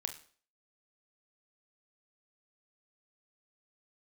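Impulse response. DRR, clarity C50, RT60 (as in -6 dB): 6.5 dB, 11.5 dB, 0.45 s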